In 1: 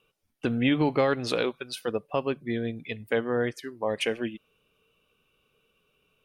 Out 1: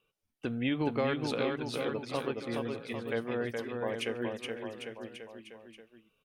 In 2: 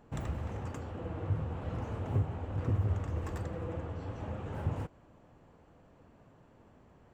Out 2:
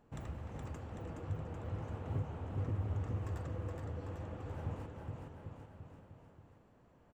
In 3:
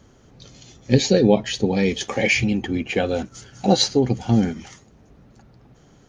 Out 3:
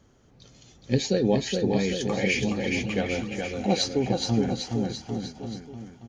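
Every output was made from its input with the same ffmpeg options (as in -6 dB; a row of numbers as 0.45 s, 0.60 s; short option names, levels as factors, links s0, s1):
-af "aecho=1:1:420|798|1138|1444|1720:0.631|0.398|0.251|0.158|0.1,volume=0.422"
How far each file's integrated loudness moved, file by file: -6.0 LU, -5.5 LU, -6.0 LU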